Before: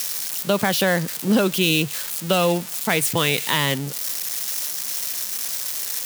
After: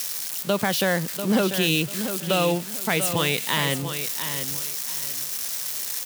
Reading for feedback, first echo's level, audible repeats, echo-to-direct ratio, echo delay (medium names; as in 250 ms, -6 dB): 25%, -9.0 dB, 3, -8.5 dB, 692 ms